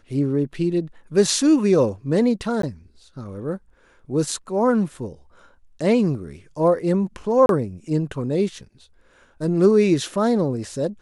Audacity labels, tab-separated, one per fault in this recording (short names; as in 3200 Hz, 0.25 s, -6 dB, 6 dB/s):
2.620000	2.630000	gap 13 ms
7.460000	7.490000	gap 32 ms